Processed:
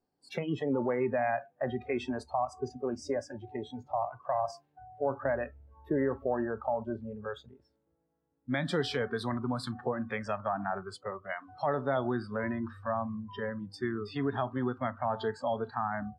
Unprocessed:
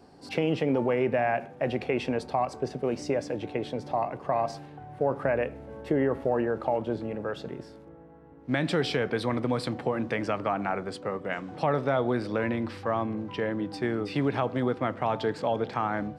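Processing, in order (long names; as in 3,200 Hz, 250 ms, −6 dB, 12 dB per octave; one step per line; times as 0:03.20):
noise reduction from a noise print of the clip's start 25 dB
level −3.5 dB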